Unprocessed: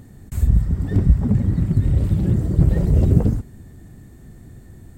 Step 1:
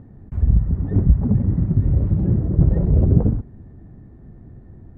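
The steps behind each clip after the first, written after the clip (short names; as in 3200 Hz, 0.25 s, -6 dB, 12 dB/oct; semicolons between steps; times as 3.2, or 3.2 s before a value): LPF 1100 Hz 12 dB/oct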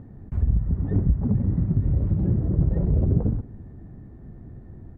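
compressor 2:1, threshold -21 dBFS, peak gain reduction 8 dB; outdoor echo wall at 31 m, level -22 dB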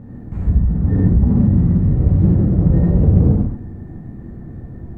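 non-linear reverb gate 0.18 s flat, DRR -7.5 dB; in parallel at -11.5 dB: hard clip -22 dBFS, distortion -4 dB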